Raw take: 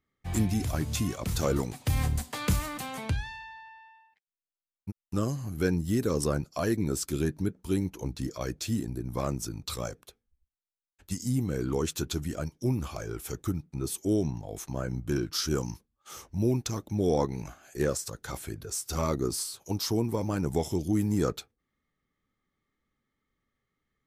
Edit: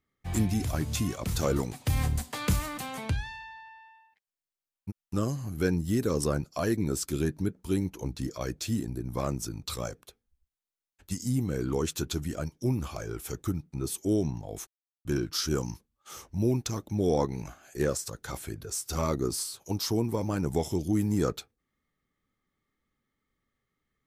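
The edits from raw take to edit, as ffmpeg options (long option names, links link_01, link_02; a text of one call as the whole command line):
ffmpeg -i in.wav -filter_complex "[0:a]asplit=3[link_01][link_02][link_03];[link_01]atrim=end=14.67,asetpts=PTS-STARTPTS,afade=type=out:start_time=14.666:duration=0.004:curve=hsin[link_04];[link_02]atrim=start=14.67:end=15.05,asetpts=PTS-STARTPTS,volume=0[link_05];[link_03]atrim=start=15.05,asetpts=PTS-STARTPTS,afade=type=in:duration=0.004:curve=hsin[link_06];[link_04][link_05][link_06]concat=n=3:v=0:a=1" out.wav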